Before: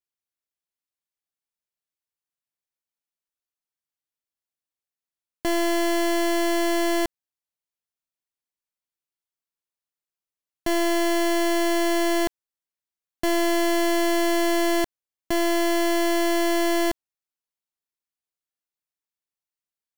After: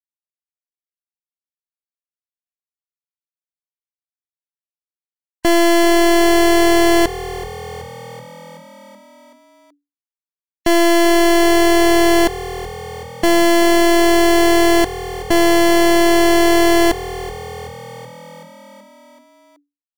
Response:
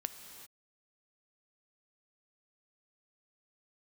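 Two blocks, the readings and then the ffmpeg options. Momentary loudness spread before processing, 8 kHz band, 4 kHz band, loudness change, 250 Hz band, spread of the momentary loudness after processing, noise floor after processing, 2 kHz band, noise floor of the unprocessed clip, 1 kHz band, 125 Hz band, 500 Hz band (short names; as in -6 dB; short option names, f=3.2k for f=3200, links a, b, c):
6 LU, +9.0 dB, +9.5 dB, +9.5 dB, +10.0 dB, 17 LU, under -85 dBFS, +10.0 dB, under -85 dBFS, +10.0 dB, n/a, +10.0 dB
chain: -filter_complex "[0:a]aresample=22050,aresample=44100,dynaudnorm=f=180:g=3:m=14dB,asoftclip=type=tanh:threshold=-17.5dB,afftfilt=real='re*gte(hypot(re,im),0.0141)':imag='im*gte(hypot(re,im),0.0141)':win_size=1024:overlap=0.75,asplit=2[a][b];[b]asplit=7[c][d][e][f][g][h][i];[c]adelay=378,afreqshift=41,volume=-16.5dB[j];[d]adelay=756,afreqshift=82,volume=-20.2dB[k];[e]adelay=1134,afreqshift=123,volume=-24dB[l];[f]adelay=1512,afreqshift=164,volume=-27.7dB[m];[g]adelay=1890,afreqshift=205,volume=-31.5dB[n];[h]adelay=2268,afreqshift=246,volume=-35.2dB[o];[i]adelay=2646,afreqshift=287,volume=-39dB[p];[j][k][l][m][n][o][p]amix=inputs=7:normalize=0[q];[a][q]amix=inputs=2:normalize=0,volume=6dB"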